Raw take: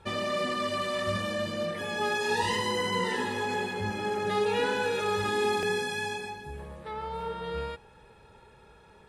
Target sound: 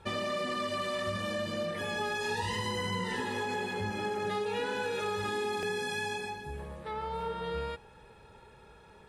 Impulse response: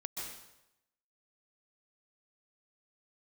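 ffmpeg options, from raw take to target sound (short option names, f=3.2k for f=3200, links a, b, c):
-filter_complex "[0:a]asettb=1/sr,asplit=3[a][b][c];[a]atrim=end=1.604[d];[b]atrim=start=1.6:end=3.2,asetpts=PTS-STARTPTS,afade=t=in:d=0.004:c=qsin,afade=t=out:st=1.596:d=0.004:c=qsin,asubboost=boost=8:cutoff=160[e];[c]atrim=start=3.196[f];[d][e]acrossfade=d=0.004:c1=hsin:c2=qsin[g];[g][f]acrossfade=d=0.004:c1=qsin:c2=hsin,acompressor=threshold=-30dB:ratio=6"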